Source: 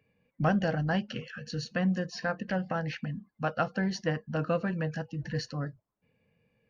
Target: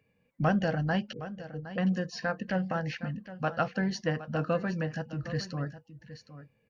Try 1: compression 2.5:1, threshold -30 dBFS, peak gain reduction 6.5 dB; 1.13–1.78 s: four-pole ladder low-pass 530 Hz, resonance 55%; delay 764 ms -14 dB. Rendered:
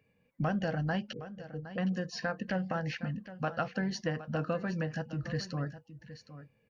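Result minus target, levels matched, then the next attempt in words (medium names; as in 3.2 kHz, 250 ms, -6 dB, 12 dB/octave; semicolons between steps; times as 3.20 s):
compression: peak gain reduction +6.5 dB
1.13–1.78 s: four-pole ladder low-pass 530 Hz, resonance 55%; delay 764 ms -14 dB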